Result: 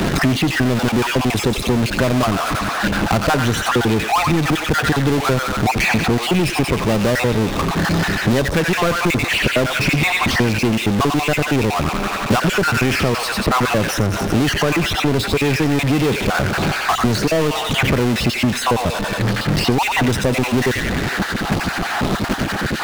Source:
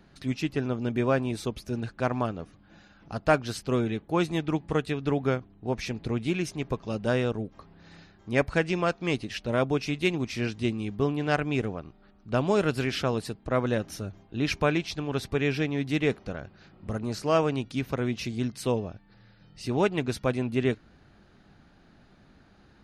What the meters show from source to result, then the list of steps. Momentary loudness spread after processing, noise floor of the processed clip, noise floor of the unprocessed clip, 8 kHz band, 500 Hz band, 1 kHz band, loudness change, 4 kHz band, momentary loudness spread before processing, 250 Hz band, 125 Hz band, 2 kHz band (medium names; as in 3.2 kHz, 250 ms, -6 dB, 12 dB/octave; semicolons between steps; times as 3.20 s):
4 LU, -23 dBFS, -58 dBFS, +18.0 dB, +8.0 dB, +14.5 dB, +11.0 dB, +16.5 dB, 10 LU, +11.0 dB, +12.0 dB, +15.5 dB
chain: random holes in the spectrogram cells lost 40%; gate -55 dBFS, range -28 dB; treble shelf 2.8 kHz -10.5 dB; in parallel at -1.5 dB: compressor with a negative ratio -30 dBFS; on the sum: feedback echo behind a high-pass 91 ms, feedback 40%, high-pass 1.6 kHz, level -5.5 dB; power-law waveshaper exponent 0.35; three bands compressed up and down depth 100%